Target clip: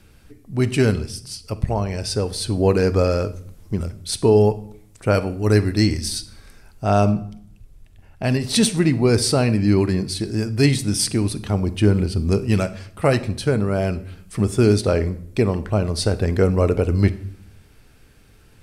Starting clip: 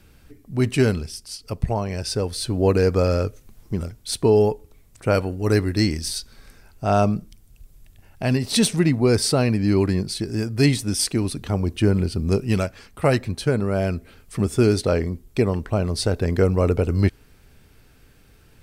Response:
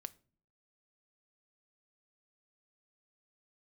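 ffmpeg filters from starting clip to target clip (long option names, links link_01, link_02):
-filter_complex "[0:a]asettb=1/sr,asplit=3[link_01][link_02][link_03];[link_01]atrim=end=7.114[link_04];[link_02]atrim=start=7.11:end=8.24,asetpts=PTS-STARTPTS,afade=type=in:duration=0.004:curve=qsin,afade=type=out:start_time=1.126:duration=0.004:curve=qsin,highshelf=frequency=4400:gain=-9[link_05];[link_03]atrim=start=8.236[link_06];[link_04][link_05]acrossfade=duration=0.004:curve1=hsin:curve2=qsin[link_07];[link_07][link_06]acrossfade=duration=0.004:curve1=qsin:curve2=hsin[link_08];[1:a]atrim=start_sample=2205,afade=type=out:start_time=0.33:duration=0.01,atrim=end_sample=14994,asetrate=23373,aresample=44100[link_09];[link_08][link_09]afir=irnorm=-1:irlink=0,volume=2.5dB"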